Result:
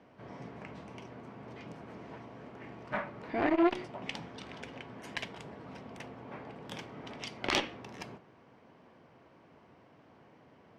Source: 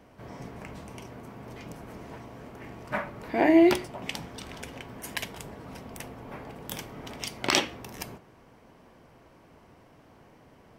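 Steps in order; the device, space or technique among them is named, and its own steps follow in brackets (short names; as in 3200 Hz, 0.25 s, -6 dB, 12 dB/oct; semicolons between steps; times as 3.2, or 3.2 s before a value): valve radio (BPF 110–4200 Hz; tube stage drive 11 dB, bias 0.65; core saturation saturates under 1200 Hz)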